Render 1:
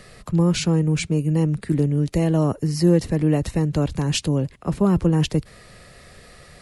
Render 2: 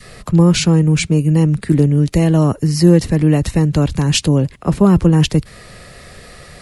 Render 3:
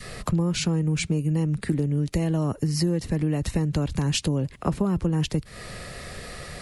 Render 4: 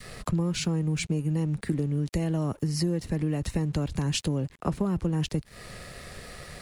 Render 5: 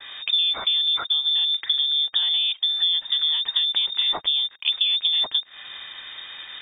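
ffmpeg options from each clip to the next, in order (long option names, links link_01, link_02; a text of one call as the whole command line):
ffmpeg -i in.wav -af "adynamicequalizer=threshold=0.0224:dfrequency=530:dqfactor=0.76:tfrequency=530:tqfactor=0.76:attack=5:release=100:ratio=0.375:range=2.5:mode=cutabove:tftype=bell,volume=8dB" out.wav
ffmpeg -i in.wav -af "acompressor=threshold=-22dB:ratio=6" out.wav
ffmpeg -i in.wav -af "aeval=exprs='sgn(val(0))*max(abs(val(0))-0.00316,0)':channel_layout=same,volume=-3dB" out.wav
ffmpeg -i in.wav -af "lowpass=frequency=3100:width_type=q:width=0.5098,lowpass=frequency=3100:width_type=q:width=0.6013,lowpass=frequency=3100:width_type=q:width=0.9,lowpass=frequency=3100:width_type=q:width=2.563,afreqshift=-3700,volume=5dB" out.wav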